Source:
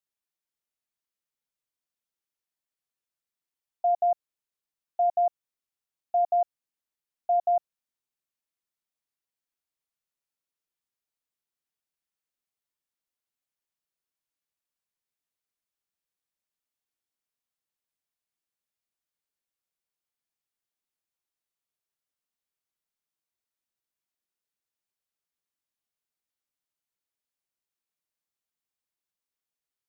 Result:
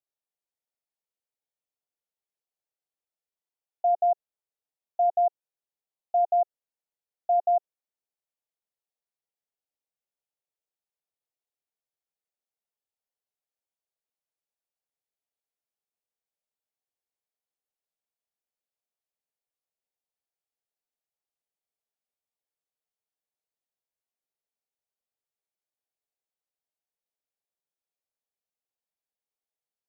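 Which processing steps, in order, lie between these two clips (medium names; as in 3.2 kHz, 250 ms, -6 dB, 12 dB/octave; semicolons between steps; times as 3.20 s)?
high-order bell 590 Hz +9 dB 1.3 oct; trim -8 dB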